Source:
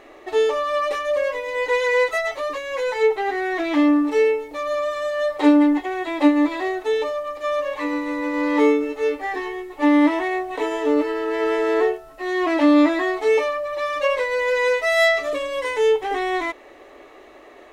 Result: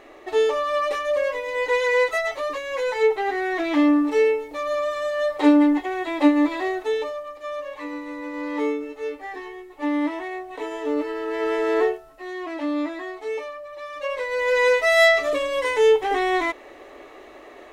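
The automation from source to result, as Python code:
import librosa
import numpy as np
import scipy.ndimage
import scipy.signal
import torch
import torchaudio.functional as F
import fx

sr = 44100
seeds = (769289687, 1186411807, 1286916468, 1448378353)

y = fx.gain(x, sr, db=fx.line((6.78, -1.0), (7.39, -8.0), (10.42, -8.0), (11.83, -1.0), (12.43, -11.0), (13.89, -11.0), (14.59, 1.5)))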